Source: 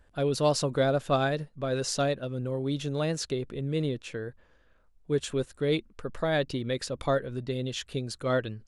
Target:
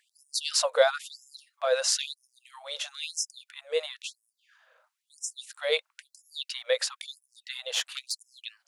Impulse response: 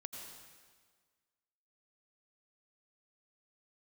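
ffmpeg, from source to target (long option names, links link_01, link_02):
-filter_complex "[0:a]asplit=3[link_01][link_02][link_03];[link_01]afade=type=out:start_time=7.7:duration=0.02[link_04];[link_02]aeval=exprs='0.106*(cos(1*acos(clip(val(0)/0.106,-1,1)))-cos(1*PI/2))+0.0168*(cos(4*acos(clip(val(0)/0.106,-1,1)))-cos(4*PI/2))':channel_layout=same,afade=type=in:start_time=7.7:duration=0.02,afade=type=out:start_time=8.11:duration=0.02[link_05];[link_03]afade=type=in:start_time=8.11:duration=0.02[link_06];[link_04][link_05][link_06]amix=inputs=3:normalize=0,afftfilt=real='re*gte(b*sr/1024,450*pow(5200/450,0.5+0.5*sin(2*PI*1*pts/sr)))':imag='im*gte(b*sr/1024,450*pow(5200/450,0.5+0.5*sin(2*PI*1*pts/sr)))':win_size=1024:overlap=0.75,volume=7dB"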